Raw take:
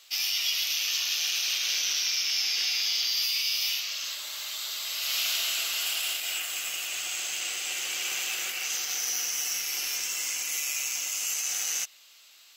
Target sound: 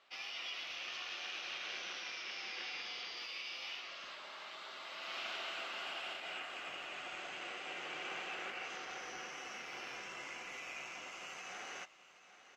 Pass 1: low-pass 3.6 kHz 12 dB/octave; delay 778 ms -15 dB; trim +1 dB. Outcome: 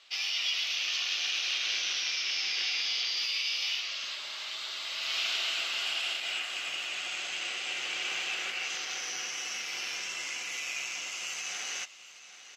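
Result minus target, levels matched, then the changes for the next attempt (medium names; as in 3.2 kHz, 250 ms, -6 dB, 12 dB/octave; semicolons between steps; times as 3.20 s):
1 kHz band -10.5 dB
change: low-pass 1.3 kHz 12 dB/octave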